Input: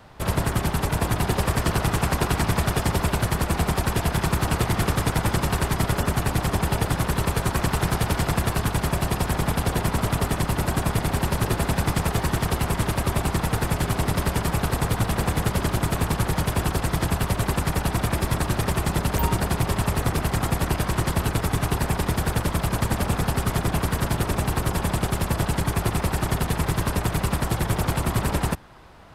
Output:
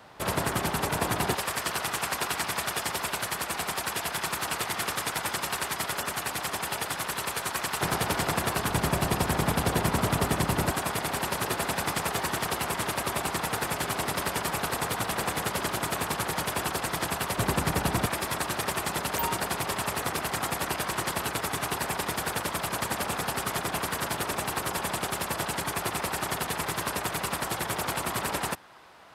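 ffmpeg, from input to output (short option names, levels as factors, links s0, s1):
-af "asetnsamples=n=441:p=0,asendcmd='1.35 highpass f 1300;7.81 highpass f 360;8.7 highpass f 150;10.71 highpass f 610;17.38 highpass f 170;18.06 highpass f 690',highpass=f=330:p=1"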